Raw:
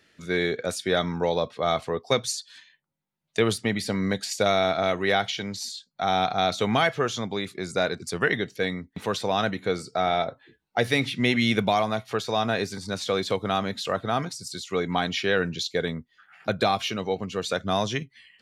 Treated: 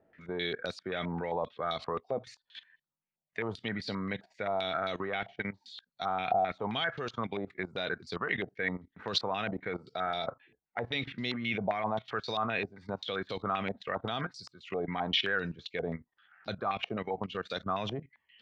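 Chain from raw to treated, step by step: level quantiser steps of 16 dB; stepped low-pass 7.6 Hz 710–4300 Hz; gain -3.5 dB

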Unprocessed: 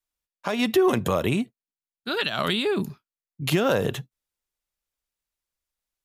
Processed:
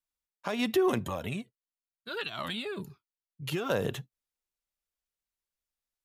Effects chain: 1.05–3.7 cascading flanger falling 1.5 Hz; gain -6 dB

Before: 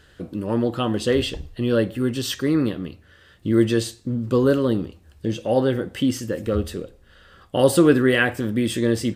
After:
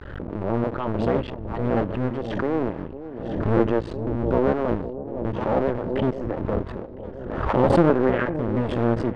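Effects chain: cycle switcher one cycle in 2, muted; LPF 1200 Hz 12 dB/oct; notch 740 Hz, Q 14; on a send: echo with dull and thin repeats by turns 0.505 s, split 800 Hz, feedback 64%, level -12.5 dB; on the sum: backwards sustainer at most 42 dB/s

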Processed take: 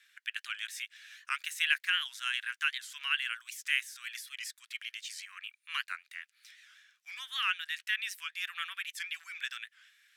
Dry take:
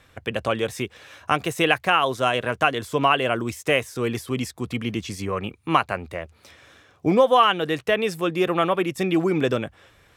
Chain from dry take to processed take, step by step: elliptic high-pass 1600 Hz, stop band 70 dB; record warp 78 rpm, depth 160 cents; gain -5 dB

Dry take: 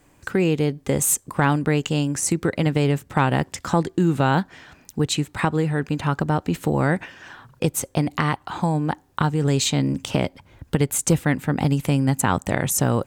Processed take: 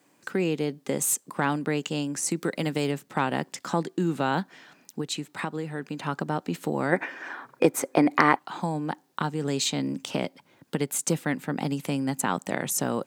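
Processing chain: 2.36–2.91 high shelf 6300 Hz +10.5 dB; 5–5.98 compressor 2:1, threshold -24 dBFS, peak gain reduction 5.5 dB; 6.93–8.39 spectral gain 240–2500 Hz +10 dB; requantised 12-bit, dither triangular; HPF 170 Hz 24 dB/oct; bell 4600 Hz +2.5 dB; gain -5.5 dB

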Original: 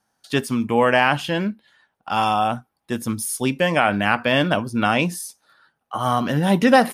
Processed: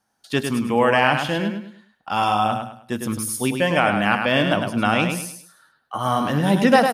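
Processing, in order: feedback echo 0.103 s, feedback 32%, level -6 dB; gain -1 dB

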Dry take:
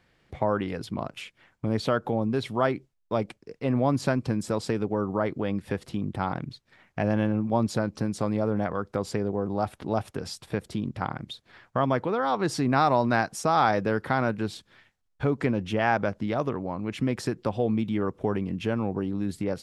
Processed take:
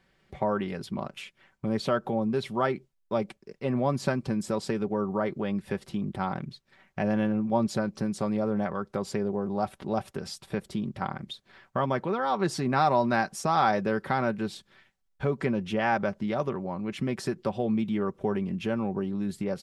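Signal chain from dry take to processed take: comb 5.2 ms, depth 47%; gain -2.5 dB

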